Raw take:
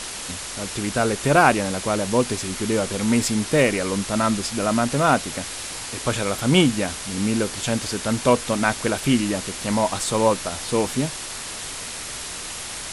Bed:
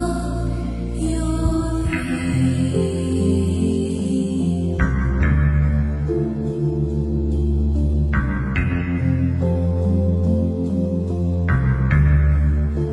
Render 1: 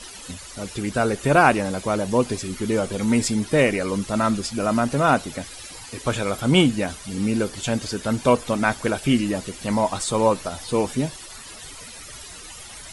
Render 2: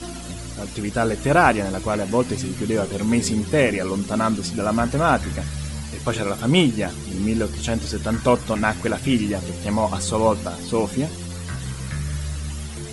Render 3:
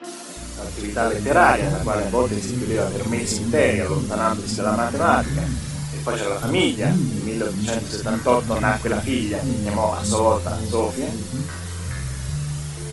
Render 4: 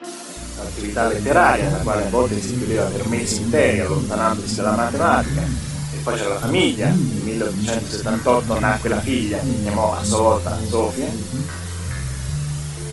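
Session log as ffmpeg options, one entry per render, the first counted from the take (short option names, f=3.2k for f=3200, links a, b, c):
-af "afftdn=nr=14:nf=-33"
-filter_complex "[1:a]volume=-12.5dB[a];[0:a][a]amix=inputs=2:normalize=0"
-filter_complex "[0:a]asplit=2[a][b];[b]adelay=48,volume=-3dB[c];[a][c]amix=inputs=2:normalize=0,acrossover=split=240|2900[d][e][f];[f]adelay=40[g];[d]adelay=360[h];[h][e][g]amix=inputs=3:normalize=0"
-af "volume=2dB,alimiter=limit=-3dB:level=0:latency=1"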